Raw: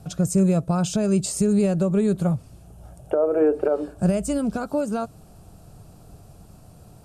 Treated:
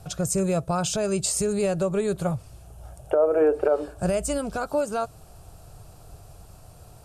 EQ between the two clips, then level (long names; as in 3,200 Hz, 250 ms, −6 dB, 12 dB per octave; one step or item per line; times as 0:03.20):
parametric band 220 Hz −13 dB 1.2 octaves
+3.0 dB